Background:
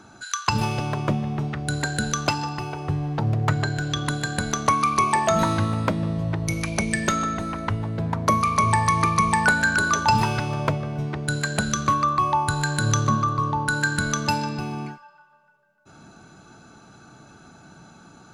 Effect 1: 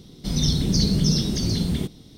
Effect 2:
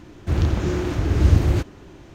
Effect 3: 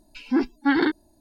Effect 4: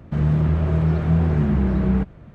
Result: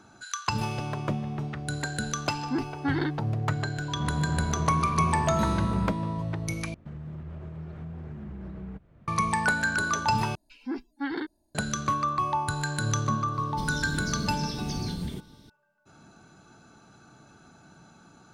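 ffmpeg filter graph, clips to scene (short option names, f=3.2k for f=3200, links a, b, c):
-filter_complex "[3:a]asplit=2[a][b];[4:a]asplit=2[c][d];[0:a]volume=-6dB[e];[c]aeval=exprs='val(0)+0.0447*sin(2*PI*980*n/s)':c=same[f];[d]alimiter=limit=-20.5dB:level=0:latency=1:release=320[g];[1:a]alimiter=limit=-18.5dB:level=0:latency=1:release=140[h];[e]asplit=3[i][j][k];[i]atrim=end=6.744[l];[g]atrim=end=2.34,asetpts=PTS-STARTPTS,volume=-11.5dB[m];[j]atrim=start=9.076:end=10.354[n];[b]atrim=end=1.2,asetpts=PTS-STARTPTS,volume=-11.5dB[o];[k]atrim=start=11.546[p];[a]atrim=end=1.2,asetpts=PTS-STARTPTS,volume=-8dB,afade=t=in:d=0.004:c=hsin,afade=t=out:st=1.196:d=0.004:c=hsin,adelay=2190[q];[f]atrim=end=2.34,asetpts=PTS-STARTPTS,volume=-10dB,afade=t=in:d=0.004:c=hsin,afade=t=out:st=2.336:d=0.004:c=hsin,adelay=3880[r];[h]atrim=end=2.17,asetpts=PTS-STARTPTS,volume=-6dB,afade=t=in:d=0.004:c=hsin,afade=t=out:st=2.166:d=0.004:c=hsin,adelay=13330[s];[l][m]acrossfade=d=0.004:c1=hsin:c2=hsin[t];[t][n]acrossfade=d=0.004:c1=hsin:c2=hsin[u];[u][o]acrossfade=d=0.004:c1=hsin:c2=hsin[v];[v][p]acrossfade=d=0.004:c1=hsin:c2=hsin[w];[w][q][r][s]amix=inputs=4:normalize=0"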